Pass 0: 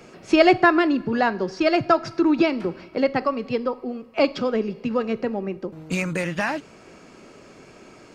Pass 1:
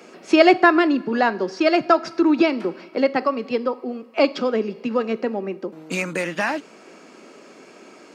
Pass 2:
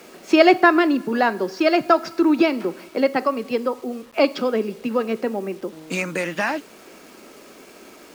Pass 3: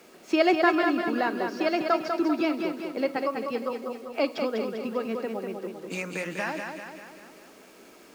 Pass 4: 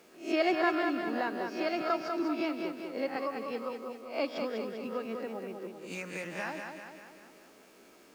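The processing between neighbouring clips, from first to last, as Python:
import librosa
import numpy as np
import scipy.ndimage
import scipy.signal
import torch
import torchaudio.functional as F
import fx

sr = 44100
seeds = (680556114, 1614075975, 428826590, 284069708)

y1 = scipy.signal.sosfilt(scipy.signal.butter(4, 210.0, 'highpass', fs=sr, output='sos'), x)
y1 = F.gain(torch.from_numpy(y1), 2.0).numpy()
y2 = fx.quant_dither(y1, sr, seeds[0], bits=8, dither='none')
y3 = fx.echo_feedback(y2, sr, ms=197, feedback_pct=54, wet_db=-5.5)
y3 = F.gain(torch.from_numpy(y3), -8.5).numpy()
y4 = fx.spec_swells(y3, sr, rise_s=0.36)
y4 = F.gain(torch.from_numpy(y4), -7.5).numpy()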